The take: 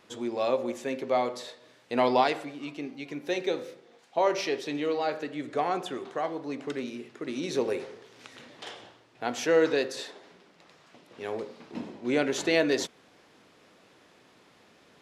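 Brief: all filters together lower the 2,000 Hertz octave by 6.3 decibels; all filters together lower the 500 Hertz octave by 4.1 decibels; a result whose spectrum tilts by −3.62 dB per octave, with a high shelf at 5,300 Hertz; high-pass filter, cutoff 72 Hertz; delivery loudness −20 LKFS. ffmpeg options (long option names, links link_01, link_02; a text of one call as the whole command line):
ffmpeg -i in.wav -af "highpass=72,equalizer=frequency=500:width_type=o:gain=-4.5,equalizer=frequency=2000:width_type=o:gain=-6.5,highshelf=frequency=5300:gain=-8.5,volume=13.5dB" out.wav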